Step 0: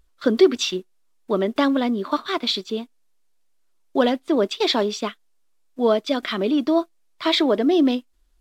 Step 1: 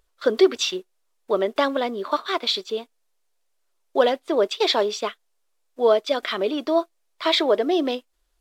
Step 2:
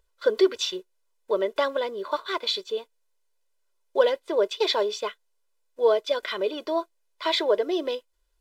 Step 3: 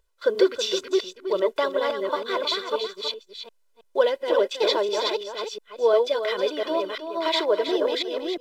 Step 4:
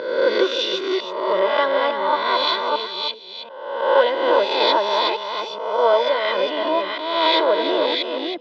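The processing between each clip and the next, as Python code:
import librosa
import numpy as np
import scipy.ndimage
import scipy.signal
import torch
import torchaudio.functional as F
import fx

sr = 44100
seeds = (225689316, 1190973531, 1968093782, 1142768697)

y1 = fx.low_shelf_res(x, sr, hz=340.0, db=-8.5, q=1.5)
y2 = y1 + 0.67 * np.pad(y1, (int(2.0 * sr / 1000.0), 0))[:len(y1)]
y2 = y2 * librosa.db_to_amplitude(-5.5)
y3 = fx.reverse_delay(y2, sr, ms=349, wet_db=-3)
y3 = y3 + 10.0 ** (-9.0 / 20.0) * np.pad(y3, (int(321 * sr / 1000.0), 0))[:len(y3)]
y4 = fx.spec_swells(y3, sr, rise_s=1.07)
y4 = fx.cabinet(y4, sr, low_hz=130.0, low_slope=24, high_hz=4100.0, hz=(130.0, 420.0, 910.0), db=(-8, -9, 5))
y4 = y4 * librosa.db_to_amplitude(3.0)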